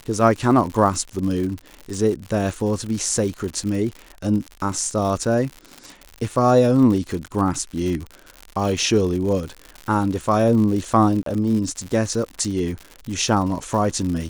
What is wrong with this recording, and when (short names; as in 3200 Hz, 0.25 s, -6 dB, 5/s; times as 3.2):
crackle 110/s -27 dBFS
11.23–11.26 gap 33 ms